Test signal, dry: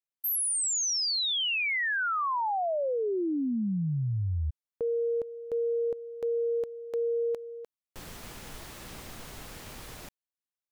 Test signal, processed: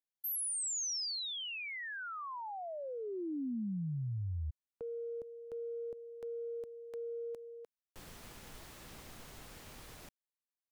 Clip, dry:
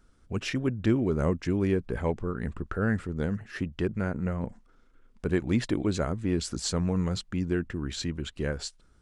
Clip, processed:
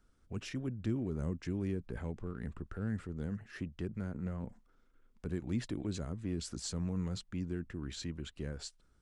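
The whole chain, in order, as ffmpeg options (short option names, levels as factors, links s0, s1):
-filter_complex "[0:a]acrossover=split=290|5100[s0][s1][s2];[s1]acompressor=threshold=0.0224:ratio=6:attack=0.25:release=104:knee=2.83:detection=peak[s3];[s0][s3][s2]amix=inputs=3:normalize=0,volume=0.398"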